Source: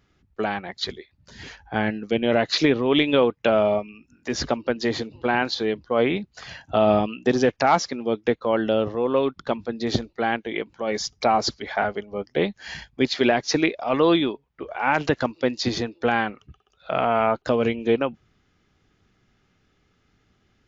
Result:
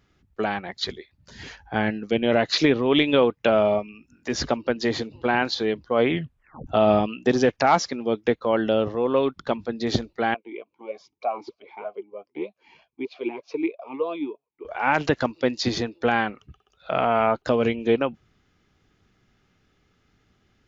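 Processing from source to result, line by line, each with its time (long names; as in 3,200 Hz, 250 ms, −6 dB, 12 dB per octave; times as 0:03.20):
0:06.10: tape stop 0.57 s
0:10.34–0:14.65: formant filter swept between two vowels a-u 3.2 Hz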